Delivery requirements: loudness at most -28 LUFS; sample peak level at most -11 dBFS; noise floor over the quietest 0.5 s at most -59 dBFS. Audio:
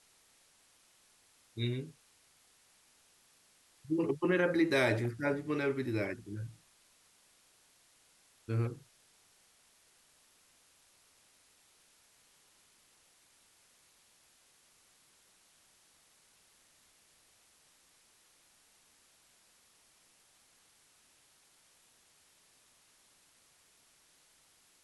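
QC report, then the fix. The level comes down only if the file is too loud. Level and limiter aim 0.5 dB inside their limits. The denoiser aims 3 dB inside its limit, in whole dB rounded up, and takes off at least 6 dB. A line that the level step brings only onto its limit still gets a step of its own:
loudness -33.5 LUFS: OK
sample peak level -16.0 dBFS: OK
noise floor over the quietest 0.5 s -67 dBFS: OK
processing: none

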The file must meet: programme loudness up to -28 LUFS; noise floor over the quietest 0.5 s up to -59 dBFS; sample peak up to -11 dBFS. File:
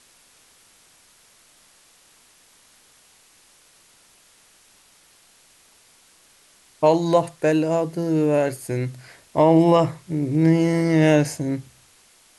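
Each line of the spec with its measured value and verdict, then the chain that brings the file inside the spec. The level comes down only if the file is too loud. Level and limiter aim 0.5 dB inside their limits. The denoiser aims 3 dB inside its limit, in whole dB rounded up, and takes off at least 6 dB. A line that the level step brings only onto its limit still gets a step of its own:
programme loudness -20.0 LUFS: fail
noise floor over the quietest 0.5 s -55 dBFS: fail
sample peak -5.0 dBFS: fail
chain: gain -8.5 dB

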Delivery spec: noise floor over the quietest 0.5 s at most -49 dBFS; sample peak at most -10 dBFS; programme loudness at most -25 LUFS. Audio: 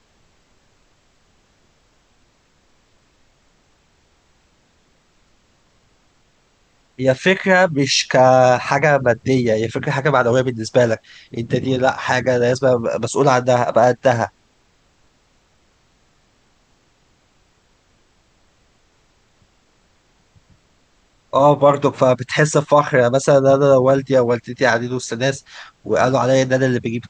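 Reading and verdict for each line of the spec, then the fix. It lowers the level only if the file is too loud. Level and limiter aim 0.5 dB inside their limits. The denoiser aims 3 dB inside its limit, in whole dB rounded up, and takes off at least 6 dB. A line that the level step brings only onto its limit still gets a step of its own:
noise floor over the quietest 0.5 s -59 dBFS: OK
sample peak -1.5 dBFS: fail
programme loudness -16.0 LUFS: fail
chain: gain -9.5 dB

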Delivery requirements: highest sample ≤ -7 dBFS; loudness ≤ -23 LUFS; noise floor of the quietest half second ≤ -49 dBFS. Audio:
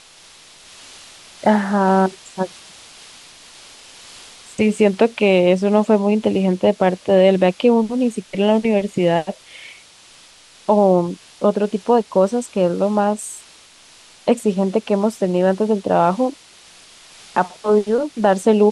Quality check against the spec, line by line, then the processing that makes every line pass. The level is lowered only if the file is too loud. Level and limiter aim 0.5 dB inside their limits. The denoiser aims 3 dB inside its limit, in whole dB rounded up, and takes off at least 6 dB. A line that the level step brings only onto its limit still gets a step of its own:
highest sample -3.5 dBFS: fail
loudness -17.5 LUFS: fail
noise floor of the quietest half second -47 dBFS: fail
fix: gain -6 dB

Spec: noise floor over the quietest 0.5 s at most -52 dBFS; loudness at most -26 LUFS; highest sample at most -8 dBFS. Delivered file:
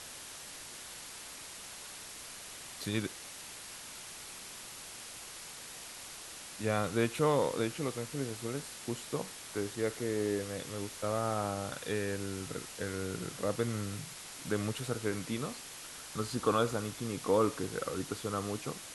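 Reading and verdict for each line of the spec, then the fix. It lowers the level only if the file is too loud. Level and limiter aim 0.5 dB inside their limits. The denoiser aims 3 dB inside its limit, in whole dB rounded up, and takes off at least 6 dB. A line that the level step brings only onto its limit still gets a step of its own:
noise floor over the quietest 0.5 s -47 dBFS: fail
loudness -36.5 LUFS: OK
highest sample -15.5 dBFS: OK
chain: denoiser 8 dB, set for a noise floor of -47 dBFS

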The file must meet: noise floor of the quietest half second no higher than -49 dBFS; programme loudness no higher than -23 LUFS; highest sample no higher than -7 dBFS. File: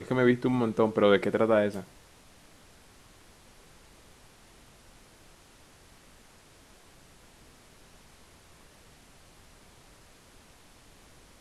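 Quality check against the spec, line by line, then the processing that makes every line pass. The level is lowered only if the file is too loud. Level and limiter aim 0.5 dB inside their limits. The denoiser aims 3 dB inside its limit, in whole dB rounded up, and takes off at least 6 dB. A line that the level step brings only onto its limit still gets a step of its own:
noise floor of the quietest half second -56 dBFS: OK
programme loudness -25.5 LUFS: OK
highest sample -7.5 dBFS: OK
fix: none

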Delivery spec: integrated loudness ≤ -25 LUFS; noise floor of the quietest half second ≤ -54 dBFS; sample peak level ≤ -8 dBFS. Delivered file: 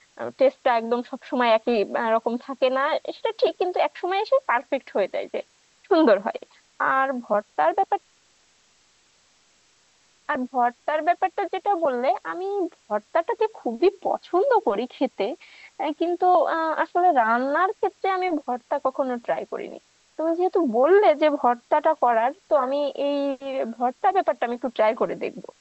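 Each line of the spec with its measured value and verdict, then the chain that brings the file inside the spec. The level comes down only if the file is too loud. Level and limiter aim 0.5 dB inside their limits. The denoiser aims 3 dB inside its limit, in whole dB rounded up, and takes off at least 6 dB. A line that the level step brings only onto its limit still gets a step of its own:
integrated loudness -23.5 LUFS: fail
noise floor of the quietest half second -61 dBFS: OK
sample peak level -6.5 dBFS: fail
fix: gain -2 dB

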